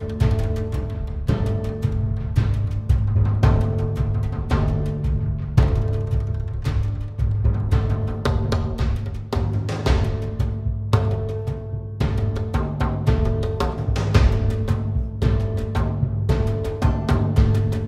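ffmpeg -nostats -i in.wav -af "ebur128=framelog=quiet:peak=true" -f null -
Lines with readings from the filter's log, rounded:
Integrated loudness:
  I:         -22.5 LUFS
  Threshold: -32.5 LUFS
Loudness range:
  LRA:         2.3 LU
  Threshold: -42.6 LUFS
  LRA low:   -23.8 LUFS
  LRA high:  -21.5 LUFS
True peak:
  Peak:       -2.1 dBFS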